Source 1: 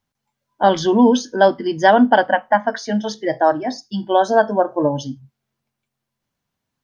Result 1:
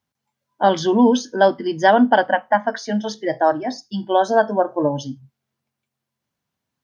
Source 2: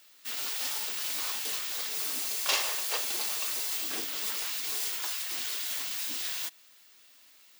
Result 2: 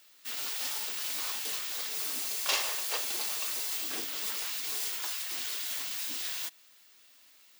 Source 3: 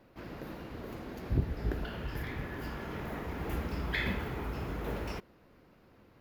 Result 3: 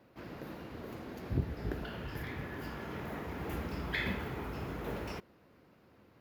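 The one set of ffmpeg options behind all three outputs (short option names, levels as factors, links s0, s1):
-af "highpass=69,volume=0.841"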